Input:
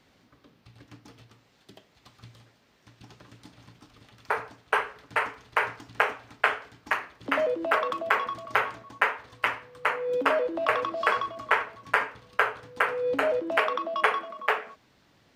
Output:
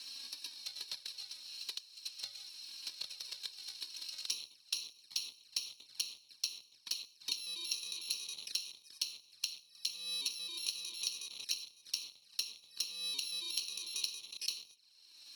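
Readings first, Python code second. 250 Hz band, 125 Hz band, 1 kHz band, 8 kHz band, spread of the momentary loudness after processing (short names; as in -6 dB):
under -25 dB, under -25 dB, under -35 dB, +12.5 dB, 7 LU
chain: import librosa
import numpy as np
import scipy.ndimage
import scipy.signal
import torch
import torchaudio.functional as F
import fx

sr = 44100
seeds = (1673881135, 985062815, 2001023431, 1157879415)

p1 = fx.bit_reversed(x, sr, seeds[0], block=64)
p2 = fx.transient(p1, sr, attack_db=5, sustain_db=1)
p3 = fx.schmitt(p2, sr, flips_db=-35.5)
p4 = p2 + (p3 * librosa.db_to_amplitude(-12.0))
p5 = fx.env_flanger(p4, sr, rest_ms=4.0, full_db=-28.5)
p6 = fx.bandpass_q(p5, sr, hz=4100.0, q=10.0)
p7 = fx.band_squash(p6, sr, depth_pct=100)
y = p7 * librosa.db_to_amplitude(8.5)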